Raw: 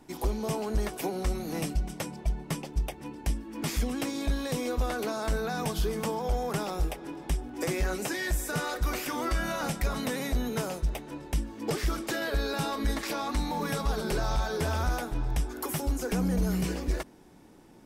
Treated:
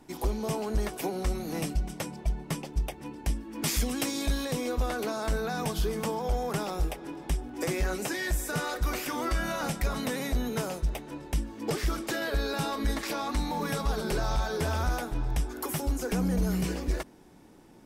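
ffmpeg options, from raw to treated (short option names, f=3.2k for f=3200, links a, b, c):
-filter_complex "[0:a]asettb=1/sr,asplit=3[a][b][c];[a]atrim=end=3.634[d];[b]atrim=start=3.63:end=4.45,asetpts=PTS-STARTPTS,afade=t=in:d=0.004:c=qsin,afade=t=out:st=0.816:d=0.004:c=qsin,highshelf=f=3k:g=8[e];[c]atrim=start=4.446[f];[d][e]acrossfade=d=0.004:c1=hsin:c2=qsin[g];[g][f]acrossfade=d=0.004:c1=qsin:c2=hsin"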